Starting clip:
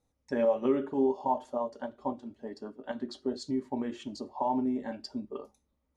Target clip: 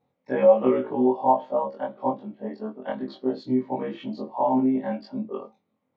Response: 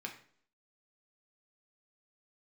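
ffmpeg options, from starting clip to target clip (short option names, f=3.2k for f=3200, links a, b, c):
-af "afftfilt=real='re':imag='-im':win_size=2048:overlap=0.75,highpass=f=110:w=0.5412,highpass=f=110:w=1.3066,equalizer=f=130:t=q:w=4:g=3,equalizer=f=200:t=q:w=4:g=6,equalizer=f=520:t=q:w=4:g=7,equalizer=f=740:t=q:w=4:g=6,equalizer=f=1.1k:t=q:w=4:g=4,equalizer=f=2.2k:t=q:w=4:g=5,lowpass=f=3.7k:w=0.5412,lowpass=f=3.7k:w=1.3066,volume=8dB"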